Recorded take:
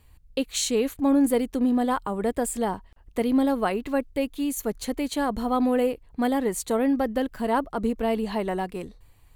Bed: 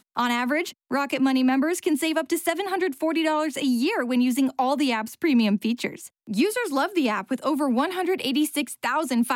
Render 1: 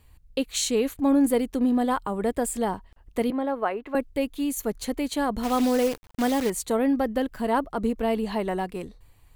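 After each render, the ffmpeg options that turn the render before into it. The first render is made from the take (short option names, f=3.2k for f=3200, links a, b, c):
-filter_complex "[0:a]asettb=1/sr,asplit=3[a][b][c];[a]atrim=end=3.304[d];[b]atrim=start=3.3:end=3.95,asetpts=PTS-STARTPTS,afade=t=in:d=0.004:c=qsin,afade=t=out:st=0.646:d=0.004:c=qsin,acrossover=split=350 2500:gain=0.2 1 0.126[e][f][g];[e][f][g]amix=inputs=3:normalize=0[h];[c]atrim=start=3.946[i];[d][h]acrossfade=d=0.004:c1=hsin:c2=qsin[j];[j][i]acrossfade=d=0.004:c1=qsin:c2=hsin,asettb=1/sr,asplit=3[k][l][m];[k]atrim=end=5.434[n];[l]atrim=start=5.43:end=6.5,asetpts=PTS-STARTPTS,afade=t=in:d=0.004:c=qsin,afade=t=out:st=1.066:d=0.004:c=qsin,acrusher=bits=6:dc=4:mix=0:aa=0.000001[o];[m]atrim=start=6.496[p];[n][o]acrossfade=d=0.004:c1=hsin:c2=qsin[q];[q][p]acrossfade=d=0.004:c1=qsin:c2=hsin"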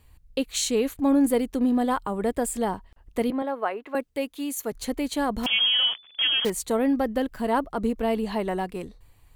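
-filter_complex "[0:a]asettb=1/sr,asplit=3[a][b][c];[a]atrim=end=3.424[d];[b]atrim=start=3.42:end=4.72,asetpts=PTS-STARTPTS,afade=t=in:d=0.004:c=qsin,afade=t=out:st=1.296:d=0.004:c=qsin,highpass=f=350:p=1[e];[c]atrim=start=4.716[f];[d][e]acrossfade=d=0.004:c1=hsin:c2=qsin[g];[g][f]acrossfade=d=0.004:c1=qsin:c2=hsin,asettb=1/sr,asplit=3[h][i][j];[h]atrim=end=5.464[k];[i]atrim=start=5.46:end=6.45,asetpts=PTS-STARTPTS,afade=t=in:d=0.004:c=qsin,afade=t=out:st=0.986:d=0.004:c=qsin,lowpass=f=3k:t=q:w=0.5098,lowpass=f=3k:t=q:w=0.6013,lowpass=f=3k:t=q:w=0.9,lowpass=f=3k:t=q:w=2.563,afreqshift=-3500[l];[j]atrim=start=6.446[m];[k][l]acrossfade=d=0.004:c1=hsin:c2=qsin[n];[n][m]acrossfade=d=0.004:c1=qsin:c2=hsin"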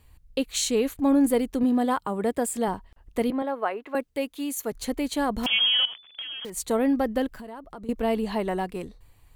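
-filter_complex "[0:a]asettb=1/sr,asplit=3[a][b][c];[a]atrim=end=1.634[d];[b]atrim=start=1.63:end=2.68,asetpts=PTS-STARTPTS,afade=t=in:d=0.004:c=qsin,afade=t=out:st=1.046:d=0.004:c=qsin,highpass=89[e];[c]atrim=start=2.676[f];[d][e]acrossfade=d=0.004:c1=hsin:c2=qsin[g];[g][f]acrossfade=d=0.004:c1=qsin:c2=hsin,asettb=1/sr,asplit=3[h][i][j];[h]atrim=end=5.854[k];[i]atrim=start=5.85:end=6.57,asetpts=PTS-STARTPTS,afade=t=in:d=0.004:c=qsin,afade=t=out:st=0.716:d=0.004:c=qsin,acompressor=threshold=-32dB:ratio=16:attack=3.2:release=140:knee=1:detection=peak[l];[j]atrim=start=6.566[m];[k][l]acrossfade=d=0.004:c1=hsin:c2=qsin[n];[n][m]acrossfade=d=0.004:c1=qsin:c2=hsin,asettb=1/sr,asplit=3[o][p][q];[o]atrim=end=7.334[r];[p]atrim=start=7.33:end=7.89,asetpts=PTS-STARTPTS,afade=t=in:d=0.004:c=qsin,afade=t=out:st=0.556:d=0.004:c=qsin,acompressor=threshold=-38dB:ratio=5:attack=3.2:release=140:knee=1:detection=peak[s];[q]atrim=start=7.886[t];[r][s]acrossfade=d=0.004:c1=hsin:c2=qsin[u];[u][t]acrossfade=d=0.004:c1=qsin:c2=hsin"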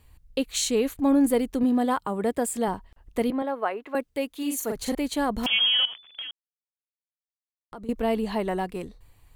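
-filter_complex "[0:a]asettb=1/sr,asplit=3[a][b][c];[a]atrim=end=4.374[d];[b]atrim=start=4.37:end=4.95,asetpts=PTS-STARTPTS,afade=t=in:d=0.004:c=qsin,afade=t=out:st=0.576:d=0.004:c=qsin,asplit=2[e][f];[f]adelay=41,volume=-3dB[g];[e][g]amix=inputs=2:normalize=0,atrim=end_sample=25578[h];[c]atrim=start=4.946[i];[d][h]acrossfade=d=0.004:c1=hsin:c2=qsin[j];[j][i]acrossfade=d=0.004:c1=qsin:c2=hsin,asplit=3[k][l][m];[k]atrim=end=6.31,asetpts=PTS-STARTPTS,afade=t=out:st=6.306:d=0.004:c=hsin[n];[l]atrim=start=6.31:end=7.72,asetpts=PTS-STARTPTS,volume=0[o];[m]atrim=start=7.72,asetpts=PTS-STARTPTS,afade=t=in:d=0.004:c=hsin[p];[n][o][p]concat=n=3:v=0:a=1"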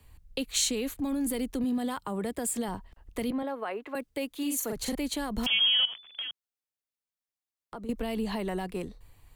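-filter_complex "[0:a]acrossover=split=160|1800|2500[a][b][c][d];[b]alimiter=limit=-23dB:level=0:latency=1:release=23[e];[a][e][c][d]amix=inputs=4:normalize=0,acrossover=split=200|3000[f][g][h];[g]acompressor=threshold=-31dB:ratio=4[i];[f][i][h]amix=inputs=3:normalize=0"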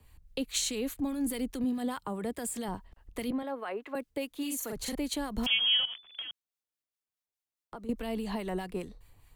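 -filter_complex "[0:a]acrossover=split=1200[a][b];[a]aeval=exprs='val(0)*(1-0.5/2+0.5/2*cos(2*PI*4.8*n/s))':c=same[c];[b]aeval=exprs='val(0)*(1-0.5/2-0.5/2*cos(2*PI*4.8*n/s))':c=same[d];[c][d]amix=inputs=2:normalize=0"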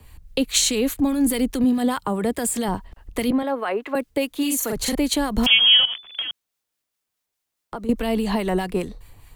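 -af "volume=12dB"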